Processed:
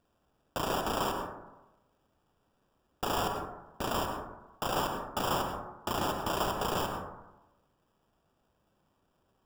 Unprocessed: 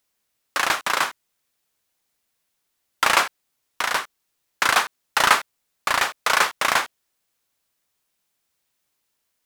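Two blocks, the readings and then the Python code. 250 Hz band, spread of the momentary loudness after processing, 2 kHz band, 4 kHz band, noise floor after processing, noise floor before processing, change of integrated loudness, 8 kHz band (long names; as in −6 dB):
+3.5 dB, 11 LU, −20.0 dB, −13.0 dB, −75 dBFS, −75 dBFS, −12.5 dB, −14.0 dB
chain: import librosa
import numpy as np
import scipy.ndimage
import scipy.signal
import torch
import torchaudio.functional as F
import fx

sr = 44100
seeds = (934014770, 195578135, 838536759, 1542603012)

p1 = fx.bass_treble(x, sr, bass_db=9, treble_db=-11)
p2 = fx.over_compress(p1, sr, threshold_db=-33.0, ratio=-1.0)
p3 = p1 + F.gain(torch.from_numpy(p2), 0.0).numpy()
p4 = fx.sample_hold(p3, sr, seeds[0], rate_hz=2100.0, jitter_pct=0)
p5 = 10.0 ** (-19.5 / 20.0) * np.tanh(p4 / 10.0 ** (-19.5 / 20.0))
p6 = fx.rev_plate(p5, sr, seeds[1], rt60_s=1.0, hf_ratio=0.3, predelay_ms=85, drr_db=4.0)
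y = F.gain(torch.from_numpy(p6), -7.5).numpy()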